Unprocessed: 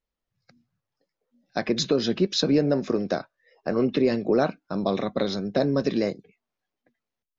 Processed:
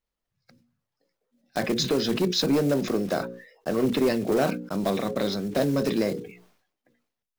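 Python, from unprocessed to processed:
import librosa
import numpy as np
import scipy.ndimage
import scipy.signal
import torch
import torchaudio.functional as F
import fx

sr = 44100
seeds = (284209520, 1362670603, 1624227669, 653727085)

y = fx.block_float(x, sr, bits=5)
y = np.clip(y, -10.0 ** (-16.0 / 20.0), 10.0 ** (-16.0 / 20.0))
y = fx.hum_notches(y, sr, base_hz=60, count=9)
y = fx.sustainer(y, sr, db_per_s=88.0)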